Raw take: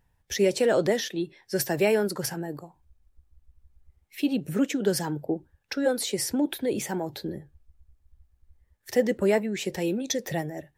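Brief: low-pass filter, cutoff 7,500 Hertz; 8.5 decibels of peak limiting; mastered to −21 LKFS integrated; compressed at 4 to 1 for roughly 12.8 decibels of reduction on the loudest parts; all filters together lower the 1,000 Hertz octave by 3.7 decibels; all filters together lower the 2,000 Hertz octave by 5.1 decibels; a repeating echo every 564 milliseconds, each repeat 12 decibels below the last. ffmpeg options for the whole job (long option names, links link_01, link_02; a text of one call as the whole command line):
ffmpeg -i in.wav -af "lowpass=7500,equalizer=frequency=1000:width_type=o:gain=-4.5,equalizer=frequency=2000:width_type=o:gain=-5,acompressor=threshold=-35dB:ratio=4,alimiter=level_in=6.5dB:limit=-24dB:level=0:latency=1,volume=-6.5dB,aecho=1:1:564|1128|1692:0.251|0.0628|0.0157,volume=19.5dB" out.wav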